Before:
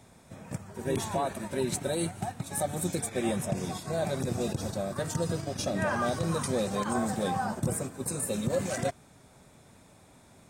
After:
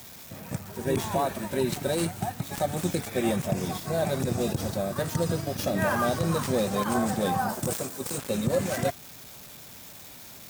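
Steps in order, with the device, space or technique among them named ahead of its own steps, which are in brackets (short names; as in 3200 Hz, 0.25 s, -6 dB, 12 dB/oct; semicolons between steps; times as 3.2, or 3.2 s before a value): budget class-D amplifier (switching dead time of 0.072 ms; switching spikes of -34 dBFS); 7.49–8.18 tone controls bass -7 dB, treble +6 dB; gain +3.5 dB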